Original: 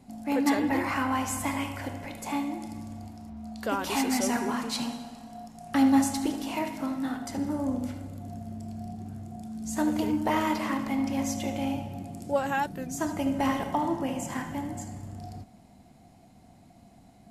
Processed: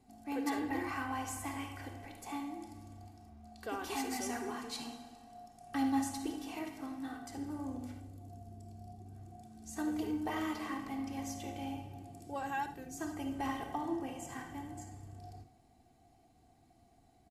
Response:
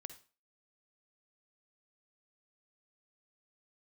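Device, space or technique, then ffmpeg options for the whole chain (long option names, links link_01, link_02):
microphone above a desk: -filter_complex "[0:a]asettb=1/sr,asplit=3[link_01][link_02][link_03];[link_01]atrim=end=8.004[link_04];[link_02]atrim=start=8:end=9.15,asetpts=PTS-STARTPTS,afade=type=in:duration=0.004:curve=qsin,afade=type=out:start_time=1.146:duration=0.004:curve=qsin,equalizer=frequency=1800:width=0.76:gain=-6.5[link_05];[link_03]atrim=start=9.146[link_06];[link_04][link_05]acrossfade=duration=0.004:curve1=hsin:curve2=qsin[link_07];[link_07][link_06]acrossfade=duration=0.004:curve1=qsin:curve2=hsin,aecho=1:1:2.6:0.6[link_08];[1:a]atrim=start_sample=2205[link_09];[link_08][link_09]afir=irnorm=-1:irlink=0,volume=-6dB"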